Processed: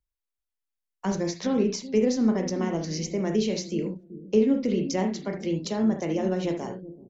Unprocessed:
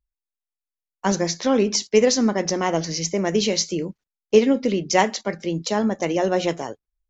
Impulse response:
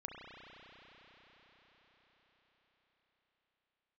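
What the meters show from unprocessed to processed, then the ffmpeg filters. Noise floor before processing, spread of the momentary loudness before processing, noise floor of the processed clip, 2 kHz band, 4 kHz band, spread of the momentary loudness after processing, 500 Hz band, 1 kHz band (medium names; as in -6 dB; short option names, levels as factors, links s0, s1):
under -85 dBFS, 9 LU, under -85 dBFS, -11.5 dB, -11.0 dB, 8 LU, -6.5 dB, -11.0 dB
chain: -filter_complex "[0:a]acrossover=split=360[s0][s1];[s0]aecho=1:1:381|762|1143:0.282|0.0648|0.0149[s2];[s1]acompressor=threshold=0.0282:ratio=5[s3];[s2][s3]amix=inputs=2:normalize=0[s4];[1:a]atrim=start_sample=2205,atrim=end_sample=3969[s5];[s4][s5]afir=irnorm=-1:irlink=0,volume=1.5"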